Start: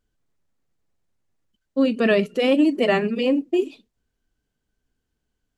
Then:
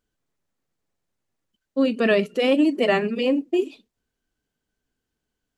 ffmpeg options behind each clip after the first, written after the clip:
-af "lowshelf=f=120:g=-8.5"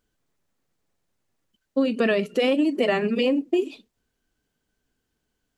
-af "acompressor=threshold=0.0794:ratio=6,volume=1.58"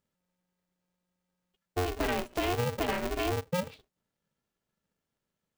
-af "aeval=exprs='val(0)*sgn(sin(2*PI*180*n/s))':c=same,volume=0.355"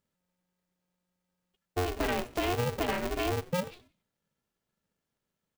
-filter_complex "[0:a]asplit=4[s0][s1][s2][s3];[s1]adelay=91,afreqshift=-94,volume=0.0891[s4];[s2]adelay=182,afreqshift=-188,volume=0.0355[s5];[s3]adelay=273,afreqshift=-282,volume=0.0143[s6];[s0][s4][s5][s6]amix=inputs=4:normalize=0"

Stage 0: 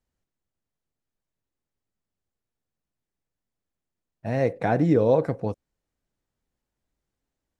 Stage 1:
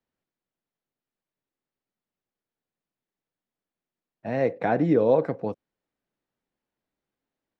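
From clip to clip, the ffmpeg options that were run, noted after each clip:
-filter_complex "[0:a]acrossover=split=150 4500:gain=0.178 1 0.178[s0][s1][s2];[s0][s1][s2]amix=inputs=3:normalize=0"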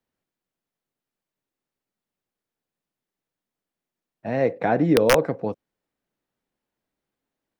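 -af "aeval=exprs='(mod(3.16*val(0)+1,2)-1)/3.16':c=same,volume=1.33"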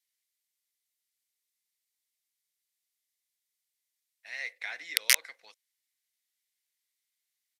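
-af "aexciter=amount=6.5:drive=5.8:freq=3400,highpass=f=2100:t=q:w=6.5,aresample=32000,aresample=44100,volume=0.266"

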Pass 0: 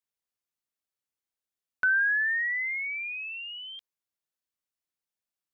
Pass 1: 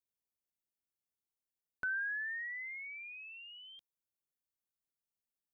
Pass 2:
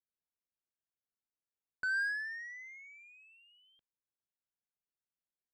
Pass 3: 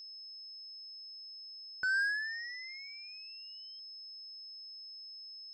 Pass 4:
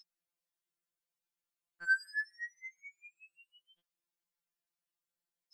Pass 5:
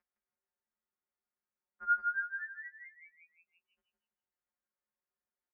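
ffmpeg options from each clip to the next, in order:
-af "equalizer=f=2200:w=0.33:g=-11.5,volume=0.841"
-af "equalizer=f=1600:w=6:g=8,adynamicsmooth=sensitivity=6.5:basefreq=1600,volume=0.668"
-af "aeval=exprs='val(0)+0.00398*sin(2*PI*5200*n/s)':c=same,volume=1.26"
-af "afftfilt=real='re*2.83*eq(mod(b,8),0)':imag='im*2.83*eq(mod(b,8),0)':win_size=2048:overlap=0.75"
-filter_complex "[0:a]asplit=2[s0][s1];[s1]aecho=0:1:162|324|486|648:0.596|0.203|0.0689|0.0234[s2];[s0][s2]amix=inputs=2:normalize=0,highpass=f=190:t=q:w=0.5412,highpass=f=190:t=q:w=1.307,lowpass=f=2200:t=q:w=0.5176,lowpass=f=2200:t=q:w=0.7071,lowpass=f=2200:t=q:w=1.932,afreqshift=-130"

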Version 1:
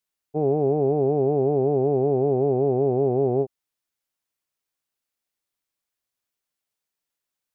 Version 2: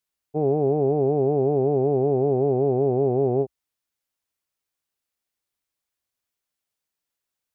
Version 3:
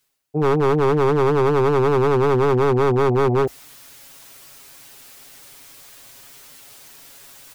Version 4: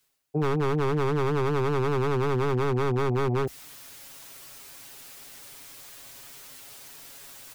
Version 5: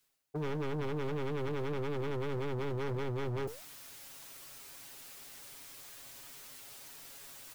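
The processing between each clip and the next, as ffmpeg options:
-af "equalizer=f=64:t=o:w=0.86:g=5.5"
-af "aecho=1:1:7.3:0.86,areverse,acompressor=mode=upward:threshold=0.112:ratio=2.5,areverse,aeval=exprs='0.188*(abs(mod(val(0)/0.188+3,4)-2)-1)':c=same,volume=1.33"
-filter_complex "[0:a]acrossover=split=260|1300[s0][s1][s2];[s0]acompressor=threshold=0.0631:ratio=4[s3];[s1]acompressor=threshold=0.0355:ratio=4[s4];[s2]acompressor=threshold=0.0282:ratio=4[s5];[s3][s4][s5]amix=inputs=3:normalize=0,volume=0.841"
-filter_complex "[0:a]flanger=delay=3.1:depth=6.7:regen=87:speed=1.6:shape=sinusoidal,asplit=2[s0][s1];[s1]acrusher=bits=4:mix=0:aa=0.000001,volume=0.266[s2];[s0][s2]amix=inputs=2:normalize=0,asoftclip=type=tanh:threshold=0.0237"

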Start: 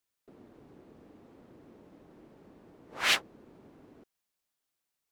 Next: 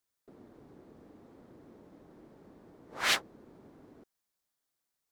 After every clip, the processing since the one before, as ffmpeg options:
-af "equalizer=f=2700:t=o:w=0.57:g=-5"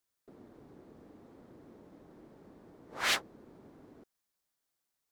-af "asoftclip=type=tanh:threshold=0.0944"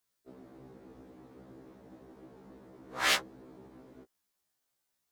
-af "afftfilt=real='re*1.73*eq(mod(b,3),0)':imag='im*1.73*eq(mod(b,3),0)':win_size=2048:overlap=0.75,volume=1.78"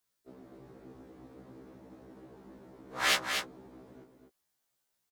-af "aecho=1:1:244:0.501"

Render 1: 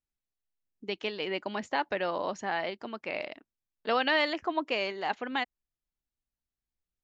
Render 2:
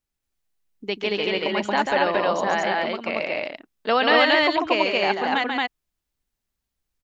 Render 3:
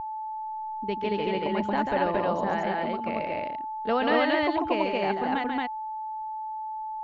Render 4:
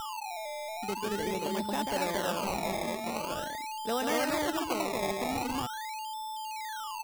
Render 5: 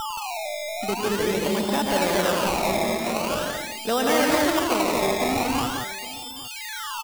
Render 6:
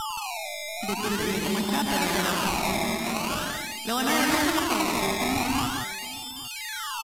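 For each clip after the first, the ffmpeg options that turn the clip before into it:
-af "aecho=1:1:139.9|227.4:0.562|0.891,volume=2.24"
-af "aeval=exprs='val(0)+0.0562*sin(2*PI*870*n/s)':c=same,aemphasis=mode=reproduction:type=riaa,volume=0.447"
-filter_complex "[0:a]asplit=2[s0][s1];[s1]alimiter=limit=0.0794:level=0:latency=1:release=88,volume=0.841[s2];[s0][s2]amix=inputs=2:normalize=0,acrusher=samples=20:mix=1:aa=0.000001:lfo=1:lforange=20:lforate=0.44,volume=0.355"
-af "aecho=1:1:104|173|811:0.316|0.562|0.141,volume=2.51"
-af "equalizer=f=520:w=2.3:g=-13.5,aresample=32000,aresample=44100"

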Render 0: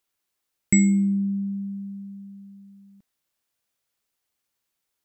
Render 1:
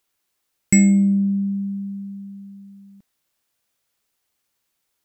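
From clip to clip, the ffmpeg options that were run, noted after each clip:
-af "asoftclip=type=tanh:threshold=0.282,volume=1.88"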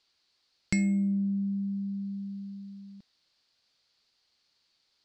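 -af "acompressor=threshold=0.0224:ratio=2,lowpass=f=4500:t=q:w=5.2,volume=0.891"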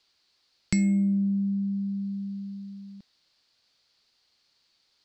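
-filter_complex "[0:a]acrossover=split=400|3000[s0][s1][s2];[s1]acompressor=threshold=0.00794:ratio=6[s3];[s0][s3][s2]amix=inputs=3:normalize=0,volume=1.5"

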